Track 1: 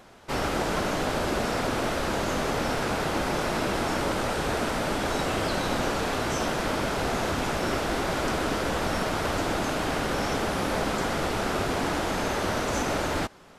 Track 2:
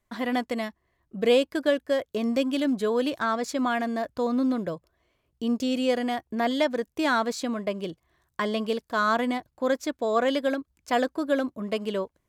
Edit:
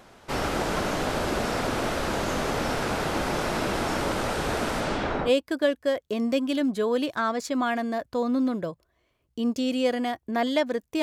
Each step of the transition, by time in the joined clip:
track 1
4.80–5.31 s: low-pass 11 kHz -> 1.1 kHz
5.28 s: go over to track 2 from 1.32 s, crossfade 0.06 s

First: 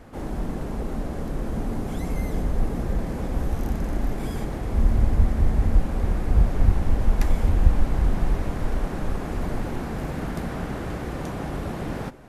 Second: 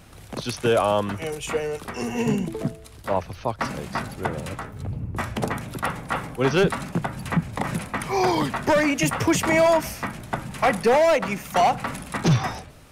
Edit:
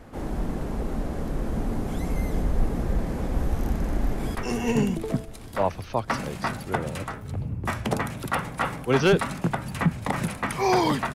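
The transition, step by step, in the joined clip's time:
first
4.07–4.35 s: echo throw 300 ms, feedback 70%, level -6.5 dB
4.35 s: go over to second from 1.86 s

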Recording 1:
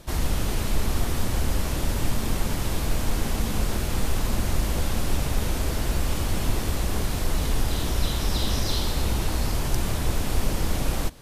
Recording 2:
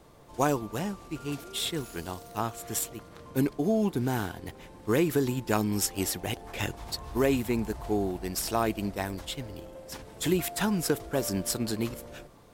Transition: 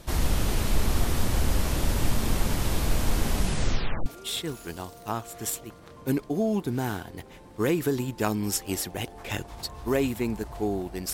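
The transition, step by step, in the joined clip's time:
recording 1
3.34 s: tape stop 0.72 s
4.06 s: go over to recording 2 from 1.35 s

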